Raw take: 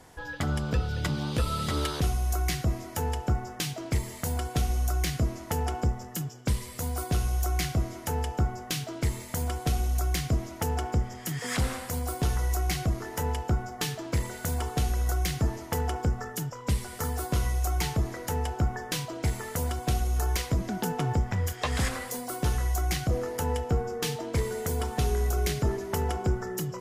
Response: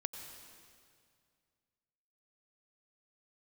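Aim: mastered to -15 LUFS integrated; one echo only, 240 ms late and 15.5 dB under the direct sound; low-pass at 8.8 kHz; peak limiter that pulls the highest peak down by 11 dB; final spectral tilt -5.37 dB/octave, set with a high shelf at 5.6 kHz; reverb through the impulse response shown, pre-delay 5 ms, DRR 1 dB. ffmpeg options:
-filter_complex "[0:a]lowpass=8800,highshelf=f=5600:g=-5.5,alimiter=level_in=1.5:limit=0.0631:level=0:latency=1,volume=0.668,aecho=1:1:240:0.168,asplit=2[s0][s1];[1:a]atrim=start_sample=2205,adelay=5[s2];[s1][s2]afir=irnorm=-1:irlink=0,volume=0.944[s3];[s0][s3]amix=inputs=2:normalize=0,volume=10"

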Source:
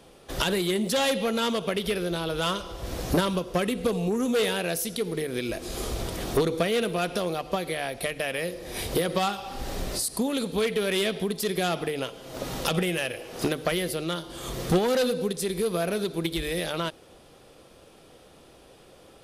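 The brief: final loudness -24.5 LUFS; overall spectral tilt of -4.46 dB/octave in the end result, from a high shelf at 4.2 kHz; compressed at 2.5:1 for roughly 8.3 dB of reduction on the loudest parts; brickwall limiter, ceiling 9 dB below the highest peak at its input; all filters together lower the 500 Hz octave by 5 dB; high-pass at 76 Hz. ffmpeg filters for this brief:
-af "highpass=76,equalizer=f=500:t=o:g=-6,highshelf=f=4200:g=-6,acompressor=threshold=0.0224:ratio=2.5,volume=4.47,alimiter=limit=0.168:level=0:latency=1"

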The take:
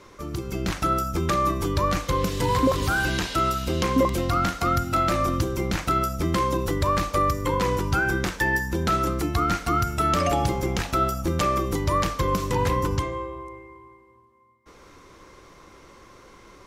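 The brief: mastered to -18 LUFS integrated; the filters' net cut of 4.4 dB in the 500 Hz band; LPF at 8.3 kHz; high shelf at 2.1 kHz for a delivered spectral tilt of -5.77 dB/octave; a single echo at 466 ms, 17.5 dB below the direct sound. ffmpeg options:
-af "lowpass=8300,equalizer=f=500:t=o:g=-5,highshelf=f=2100:g=-8,aecho=1:1:466:0.133,volume=2.66"

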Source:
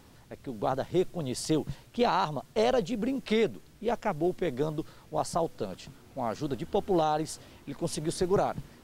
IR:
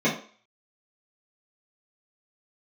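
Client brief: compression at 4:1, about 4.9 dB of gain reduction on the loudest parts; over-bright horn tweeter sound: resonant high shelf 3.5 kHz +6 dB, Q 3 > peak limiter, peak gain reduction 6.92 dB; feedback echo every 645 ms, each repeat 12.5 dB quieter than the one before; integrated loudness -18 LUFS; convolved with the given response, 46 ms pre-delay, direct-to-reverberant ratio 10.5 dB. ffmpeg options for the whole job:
-filter_complex "[0:a]acompressor=threshold=0.0447:ratio=4,aecho=1:1:645|1290|1935:0.237|0.0569|0.0137,asplit=2[s0][s1];[1:a]atrim=start_sample=2205,adelay=46[s2];[s1][s2]afir=irnorm=-1:irlink=0,volume=0.0501[s3];[s0][s3]amix=inputs=2:normalize=0,highshelf=f=3500:t=q:w=3:g=6,volume=5.96,alimiter=limit=0.473:level=0:latency=1"

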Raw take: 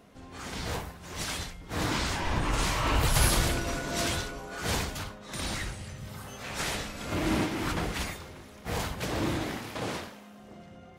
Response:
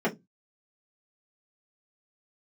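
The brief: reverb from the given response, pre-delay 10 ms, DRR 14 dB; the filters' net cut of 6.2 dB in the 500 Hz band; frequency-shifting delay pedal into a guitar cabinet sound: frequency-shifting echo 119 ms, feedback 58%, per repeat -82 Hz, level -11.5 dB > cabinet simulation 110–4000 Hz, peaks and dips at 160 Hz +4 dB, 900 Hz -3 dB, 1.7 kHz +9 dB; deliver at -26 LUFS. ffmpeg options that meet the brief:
-filter_complex "[0:a]equalizer=f=500:t=o:g=-8.5,asplit=2[s0][s1];[1:a]atrim=start_sample=2205,adelay=10[s2];[s1][s2]afir=irnorm=-1:irlink=0,volume=0.0501[s3];[s0][s3]amix=inputs=2:normalize=0,asplit=8[s4][s5][s6][s7][s8][s9][s10][s11];[s5]adelay=119,afreqshift=-82,volume=0.266[s12];[s6]adelay=238,afreqshift=-164,volume=0.155[s13];[s7]adelay=357,afreqshift=-246,volume=0.0891[s14];[s8]adelay=476,afreqshift=-328,volume=0.0519[s15];[s9]adelay=595,afreqshift=-410,volume=0.0302[s16];[s10]adelay=714,afreqshift=-492,volume=0.0174[s17];[s11]adelay=833,afreqshift=-574,volume=0.0101[s18];[s4][s12][s13][s14][s15][s16][s17][s18]amix=inputs=8:normalize=0,highpass=110,equalizer=f=160:t=q:w=4:g=4,equalizer=f=900:t=q:w=4:g=-3,equalizer=f=1700:t=q:w=4:g=9,lowpass=f=4000:w=0.5412,lowpass=f=4000:w=1.3066,volume=2"

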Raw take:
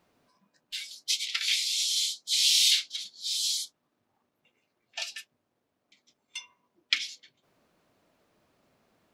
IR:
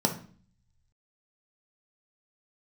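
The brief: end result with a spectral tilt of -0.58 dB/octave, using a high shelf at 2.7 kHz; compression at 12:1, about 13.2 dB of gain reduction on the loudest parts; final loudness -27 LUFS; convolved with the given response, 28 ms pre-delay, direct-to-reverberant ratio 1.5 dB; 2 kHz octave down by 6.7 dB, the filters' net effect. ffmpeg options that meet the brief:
-filter_complex "[0:a]equalizer=f=2000:t=o:g=-4.5,highshelf=f=2700:g=-7.5,acompressor=threshold=0.0126:ratio=12,asplit=2[s0][s1];[1:a]atrim=start_sample=2205,adelay=28[s2];[s1][s2]afir=irnorm=-1:irlink=0,volume=0.266[s3];[s0][s3]amix=inputs=2:normalize=0,volume=4.47"

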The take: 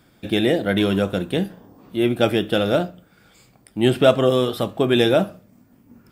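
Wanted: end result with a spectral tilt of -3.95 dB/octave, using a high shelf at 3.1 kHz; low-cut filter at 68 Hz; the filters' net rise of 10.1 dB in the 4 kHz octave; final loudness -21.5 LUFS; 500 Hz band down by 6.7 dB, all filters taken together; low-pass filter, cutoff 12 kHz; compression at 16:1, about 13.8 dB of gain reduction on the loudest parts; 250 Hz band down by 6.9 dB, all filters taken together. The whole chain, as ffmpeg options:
-af "highpass=68,lowpass=12000,equalizer=f=250:t=o:g=-7,equalizer=f=500:t=o:g=-7,highshelf=f=3100:g=6,equalizer=f=4000:t=o:g=8.5,acompressor=threshold=0.0562:ratio=16,volume=2.66"

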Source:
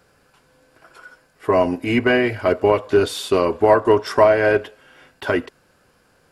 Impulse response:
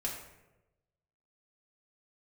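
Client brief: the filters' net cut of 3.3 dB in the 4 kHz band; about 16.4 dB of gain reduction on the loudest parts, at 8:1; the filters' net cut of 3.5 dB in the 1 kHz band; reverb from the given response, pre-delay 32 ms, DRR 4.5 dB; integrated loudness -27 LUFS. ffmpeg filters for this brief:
-filter_complex "[0:a]equalizer=f=1000:t=o:g=-4,equalizer=f=4000:t=o:g=-4.5,acompressor=threshold=0.0398:ratio=8,asplit=2[s0][s1];[1:a]atrim=start_sample=2205,adelay=32[s2];[s1][s2]afir=irnorm=-1:irlink=0,volume=0.447[s3];[s0][s3]amix=inputs=2:normalize=0,volume=1.68"

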